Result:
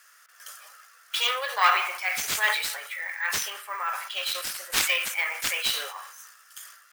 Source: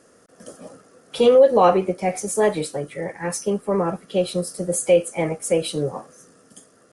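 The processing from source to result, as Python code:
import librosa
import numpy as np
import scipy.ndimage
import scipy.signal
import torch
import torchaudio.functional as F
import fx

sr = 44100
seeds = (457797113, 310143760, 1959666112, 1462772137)

y = fx.tracing_dist(x, sr, depth_ms=0.2)
y = scipy.signal.sosfilt(scipy.signal.butter(4, 1400.0, 'highpass', fs=sr, output='sos'), y)
y = fx.high_shelf(y, sr, hz=4900.0, db=-7.0)
y = fx.rev_spring(y, sr, rt60_s=1.0, pass_ms=(35,), chirp_ms=50, drr_db=14.5)
y = np.repeat(y[::2], 2)[:len(y)]
y = fx.sustainer(y, sr, db_per_s=65.0)
y = y * 10.0 ** (8.0 / 20.0)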